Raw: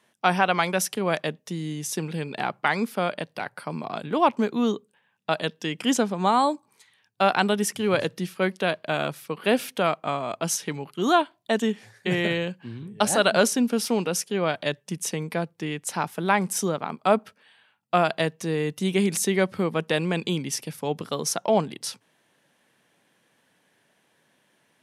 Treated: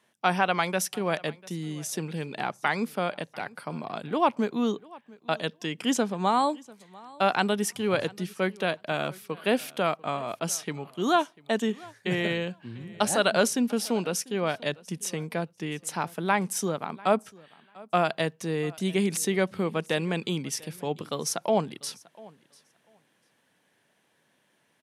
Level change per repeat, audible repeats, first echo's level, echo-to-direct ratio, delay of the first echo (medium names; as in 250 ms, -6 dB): no regular repeats, 1, -23.0 dB, -23.0 dB, 694 ms